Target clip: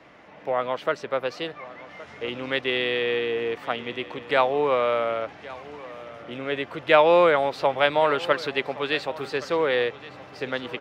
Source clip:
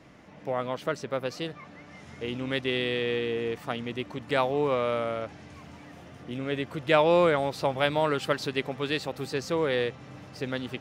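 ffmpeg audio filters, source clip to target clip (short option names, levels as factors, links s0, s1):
-filter_complex "[0:a]acrossover=split=380 4100:gain=0.251 1 0.224[s0][s1][s2];[s0][s1][s2]amix=inputs=3:normalize=0,asplit=2[s3][s4];[s4]aecho=0:1:1118:0.119[s5];[s3][s5]amix=inputs=2:normalize=0,volume=2"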